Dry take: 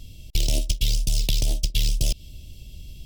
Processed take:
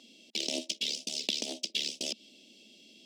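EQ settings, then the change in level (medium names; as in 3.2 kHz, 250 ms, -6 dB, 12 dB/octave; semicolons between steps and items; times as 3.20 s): Chebyshev high-pass 220 Hz, order 5; distance through air 130 m; treble shelf 5 kHz +8 dB; -1.5 dB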